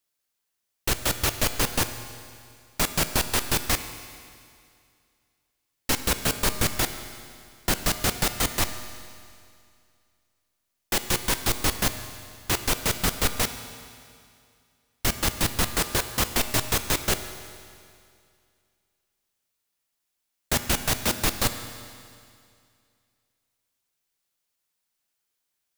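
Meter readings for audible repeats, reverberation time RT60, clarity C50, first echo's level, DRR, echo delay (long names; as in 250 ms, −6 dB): no echo audible, 2.3 s, 10.0 dB, no echo audible, 9.0 dB, no echo audible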